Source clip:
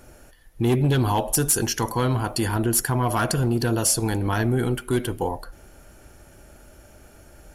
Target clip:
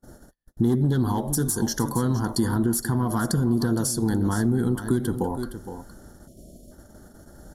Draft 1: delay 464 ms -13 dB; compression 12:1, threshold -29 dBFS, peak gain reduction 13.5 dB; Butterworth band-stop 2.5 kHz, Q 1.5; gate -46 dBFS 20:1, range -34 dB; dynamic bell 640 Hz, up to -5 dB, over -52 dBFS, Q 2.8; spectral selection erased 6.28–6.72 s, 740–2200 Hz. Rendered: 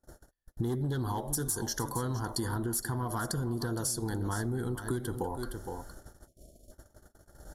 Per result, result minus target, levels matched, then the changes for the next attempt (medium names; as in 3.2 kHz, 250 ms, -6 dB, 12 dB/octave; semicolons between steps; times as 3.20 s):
compression: peak gain reduction +5.5 dB; 250 Hz band -3.0 dB
change: compression 12:1, threshold -23 dBFS, peak gain reduction 8 dB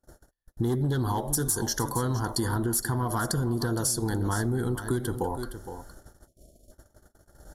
250 Hz band -3.5 dB
add after Butterworth band-stop: peaking EQ 210 Hz +10 dB 1.1 oct